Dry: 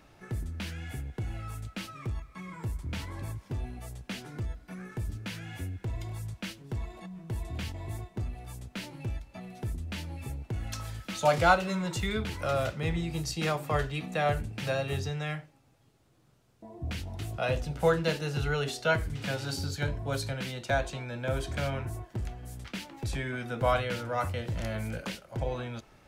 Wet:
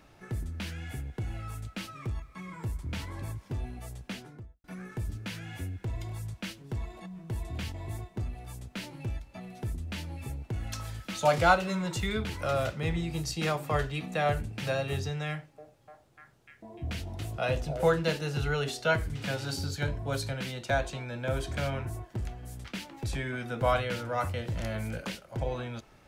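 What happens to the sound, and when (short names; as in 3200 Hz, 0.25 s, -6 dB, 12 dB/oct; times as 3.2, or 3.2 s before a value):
4.03–4.64 studio fade out
15.28–17.84 delay with a stepping band-pass 0.298 s, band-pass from 480 Hz, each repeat 0.7 oct, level -4 dB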